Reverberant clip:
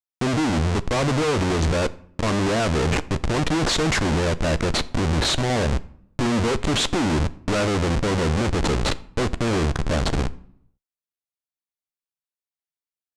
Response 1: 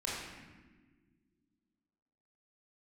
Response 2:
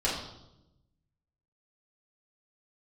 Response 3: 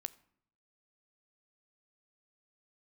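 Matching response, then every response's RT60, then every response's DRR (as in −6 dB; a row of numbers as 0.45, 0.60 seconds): 3; non-exponential decay, 0.90 s, 0.65 s; −7.0, −8.5, 13.5 decibels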